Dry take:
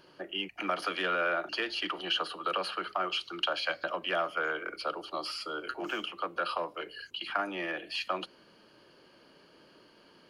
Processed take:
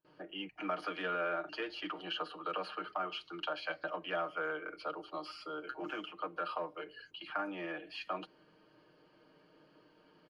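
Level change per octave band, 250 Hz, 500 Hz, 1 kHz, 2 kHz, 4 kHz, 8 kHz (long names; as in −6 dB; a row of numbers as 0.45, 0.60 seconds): −3.5 dB, −4.5 dB, −5.5 dB, −7.5 dB, −10.5 dB, below −15 dB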